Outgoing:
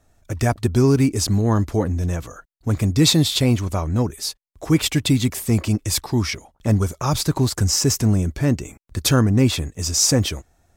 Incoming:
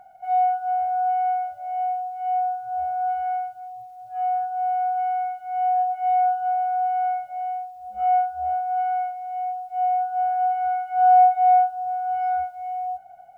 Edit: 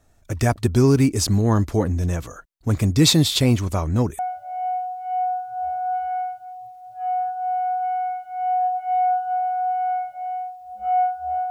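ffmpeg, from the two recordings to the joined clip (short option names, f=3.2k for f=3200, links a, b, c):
-filter_complex "[0:a]apad=whole_dur=11.5,atrim=end=11.5,atrim=end=4.192[a];[1:a]atrim=start=1.338:end=8.65[b];[a][b]acrossfade=d=0.004:c1=hsin:c2=hsin"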